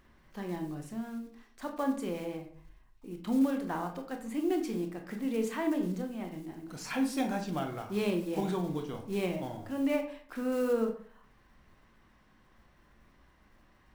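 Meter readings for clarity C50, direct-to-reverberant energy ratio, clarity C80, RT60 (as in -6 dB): 9.5 dB, 4.0 dB, 13.0 dB, 0.55 s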